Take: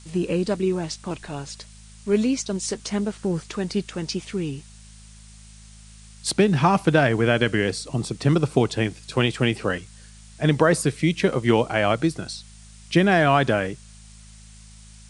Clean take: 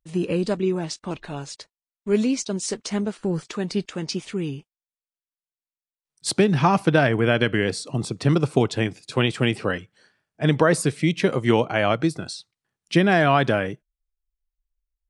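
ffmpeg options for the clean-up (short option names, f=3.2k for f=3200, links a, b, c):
-af "bandreject=f=53.2:t=h:w=4,bandreject=f=106.4:t=h:w=4,bandreject=f=159.6:t=h:w=4,bandreject=f=212.8:t=h:w=4,afftdn=nr=30:nf=-46"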